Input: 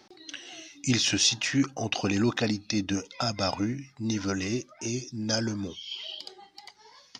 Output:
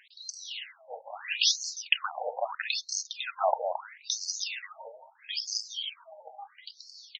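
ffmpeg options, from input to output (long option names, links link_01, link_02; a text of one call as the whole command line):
ffmpeg -i in.wav -filter_complex "[0:a]asplit=2[link_01][link_02];[link_02]adelay=221.6,volume=-7dB,highshelf=frequency=4000:gain=-4.99[link_03];[link_01][link_03]amix=inputs=2:normalize=0,afftfilt=real='re*between(b*sr/1024,640*pow(6000/640,0.5+0.5*sin(2*PI*0.76*pts/sr))/1.41,640*pow(6000/640,0.5+0.5*sin(2*PI*0.76*pts/sr))*1.41)':imag='im*between(b*sr/1024,640*pow(6000/640,0.5+0.5*sin(2*PI*0.76*pts/sr))/1.41,640*pow(6000/640,0.5+0.5*sin(2*PI*0.76*pts/sr))*1.41)':win_size=1024:overlap=0.75,volume=7.5dB" out.wav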